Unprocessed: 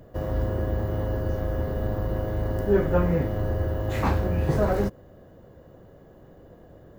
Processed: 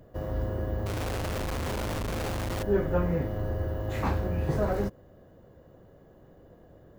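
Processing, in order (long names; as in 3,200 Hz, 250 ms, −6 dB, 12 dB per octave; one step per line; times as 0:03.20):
0:00.86–0:02.63: comparator with hysteresis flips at −43 dBFS
level −4.5 dB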